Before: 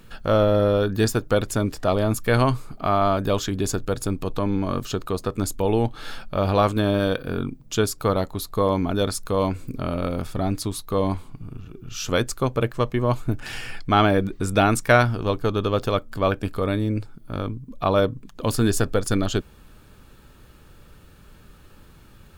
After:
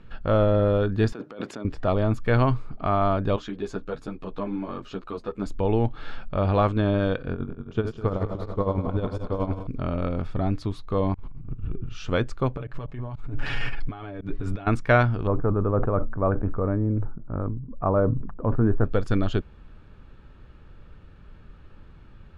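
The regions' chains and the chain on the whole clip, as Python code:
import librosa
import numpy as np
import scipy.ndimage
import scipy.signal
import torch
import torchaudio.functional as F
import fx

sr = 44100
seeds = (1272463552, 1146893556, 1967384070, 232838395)

y = fx.chain(x, sr, fx.highpass(hz=190.0, slope=24),
    fx.over_compress(threshold_db=-32.0, ratio=-1.0), at=(1.12, 1.65))
y = fx.chain(y, sr, fx.highpass(hz=52.0, slope=6),
    fx.peak_eq(hz=97.0, db=-14.5, octaves=0.76),
    fx.ensemble(), at=(3.36, 5.46))
y = fx.chain(y, sr, fx.reverse_delay_fb(ms=103, feedback_pct=79, wet_db=-9.0),
    fx.tremolo(hz=11.0, depth=0.71),
    fx.high_shelf(hz=2400.0, db=-9.5), at=(7.33, 9.67))
y = fx.chain(y, sr, fx.lowpass(hz=2600.0, slope=6),
    fx.low_shelf(hz=98.0, db=10.0),
    fx.over_compress(threshold_db=-32.0, ratio=-0.5), at=(11.14, 11.87))
y = fx.chain(y, sr, fx.comb(ms=7.1, depth=0.59),
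    fx.over_compress(threshold_db=-29.0, ratio=-1.0),
    fx.auto_swell(attack_ms=140.0), at=(12.57, 14.67))
y = fx.chain(y, sr, fx.lowpass(hz=1400.0, slope=24),
    fx.sustainer(db_per_s=64.0), at=(15.27, 18.85))
y = scipy.signal.sosfilt(scipy.signal.butter(2, 2800.0, 'lowpass', fs=sr, output='sos'), y)
y = fx.low_shelf(y, sr, hz=110.0, db=7.0)
y = F.gain(torch.from_numpy(y), -3.0).numpy()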